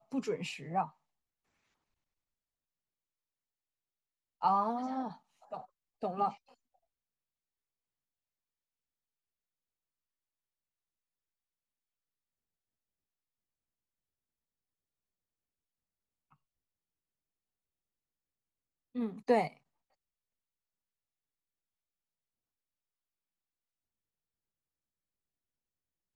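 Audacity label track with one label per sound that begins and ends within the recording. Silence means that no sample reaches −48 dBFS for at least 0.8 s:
4.420000	6.350000	sound
18.950000	19.570000	sound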